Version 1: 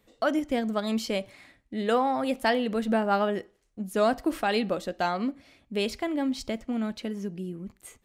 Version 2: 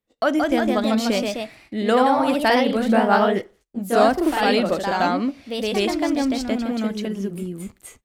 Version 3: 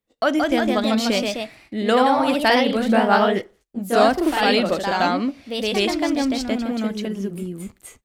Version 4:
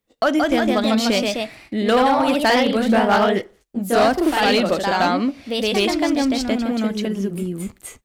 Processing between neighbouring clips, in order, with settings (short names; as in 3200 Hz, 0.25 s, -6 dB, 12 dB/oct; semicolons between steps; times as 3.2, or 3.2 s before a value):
echoes that change speed 0.189 s, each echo +1 st, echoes 2; gate -55 dBFS, range -25 dB; gain +5.5 dB
dynamic EQ 3500 Hz, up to +4 dB, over -34 dBFS, Q 0.71
in parallel at -1.5 dB: compressor, threshold -28 dBFS, peak gain reduction 16 dB; on the sum: hard clip -10 dBFS, distortion -18 dB